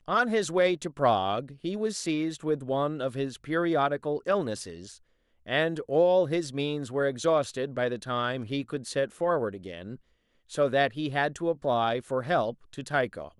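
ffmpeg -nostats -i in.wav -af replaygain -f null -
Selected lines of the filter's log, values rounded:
track_gain = +7.5 dB
track_peak = 0.203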